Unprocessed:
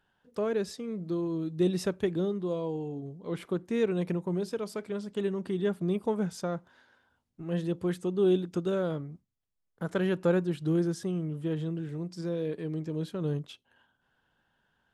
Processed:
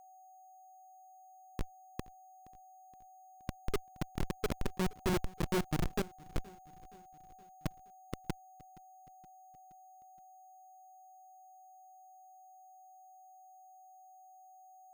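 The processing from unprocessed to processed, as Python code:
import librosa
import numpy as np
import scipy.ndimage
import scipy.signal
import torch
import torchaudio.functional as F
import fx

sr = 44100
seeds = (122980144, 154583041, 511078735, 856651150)

p1 = fx.pitch_glide(x, sr, semitones=-2.5, runs='ending unshifted')
p2 = fx.doppler_pass(p1, sr, speed_mps=8, closest_m=3.5, pass_at_s=5.1)
p3 = fx.dereverb_blind(p2, sr, rt60_s=1.7)
p4 = fx.over_compress(p3, sr, threshold_db=-44.0, ratio=-0.5)
p5 = p3 + (p4 * 10.0 ** (-1.5 / 20.0))
p6 = fx.schmitt(p5, sr, flips_db=-32.0)
p7 = fx.echo_feedback(p6, sr, ms=471, feedback_pct=58, wet_db=-23.5)
p8 = p7 + 10.0 ** (-68.0 / 20.0) * np.sin(2.0 * np.pi * 6600.0 * np.arange(len(p7)) / sr)
p9 = np.repeat(p8[::6], 6)[:len(p8)]
y = p9 * 10.0 ** (13.0 / 20.0)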